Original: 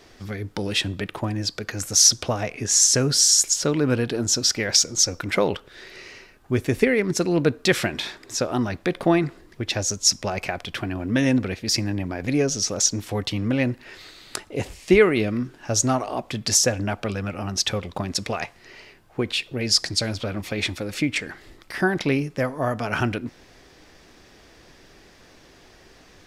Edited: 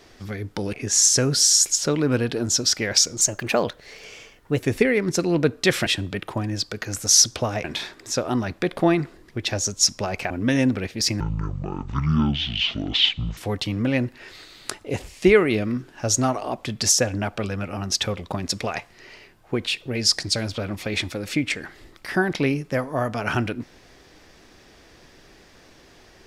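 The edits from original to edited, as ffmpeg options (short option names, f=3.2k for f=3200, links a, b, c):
-filter_complex "[0:a]asplit=9[a][b][c][d][e][f][g][h][i];[a]atrim=end=0.732[j];[b]atrim=start=2.508:end=4.994[k];[c]atrim=start=4.99:end=6.62,asetpts=PTS-STARTPTS,asetrate=51597,aresample=44100,atrim=end_sample=61438,asetpts=PTS-STARTPTS[l];[d]atrim=start=6.616:end=7.882[m];[e]atrim=start=0.728:end=2.512[n];[f]atrim=start=7.878:end=10.542[o];[g]atrim=start=10.978:end=11.884[p];[h]atrim=start=11.88:end=13.03,asetpts=PTS-STARTPTS,asetrate=23373,aresample=44100[q];[i]atrim=start=13.026[r];[j][k]acrossfade=d=0.004:c1=hsin:c2=hsin[s];[s][l]acrossfade=d=0.004:c1=hsin:c2=hsin[t];[t][m]acrossfade=d=0.004:c1=hsin:c2=hsin[u];[u][n]acrossfade=d=0.004:c1=hsin:c2=hsin[v];[v][o]acrossfade=d=0.004:c1=hsin:c2=hsin[w];[w][p]acrossfade=d=0.004:c1=hsin:c2=hsin[x];[x][q]acrossfade=d=0.004:c1=hsin:c2=hsin[y];[y][r]acrossfade=d=0.004:c1=hsin:c2=hsin"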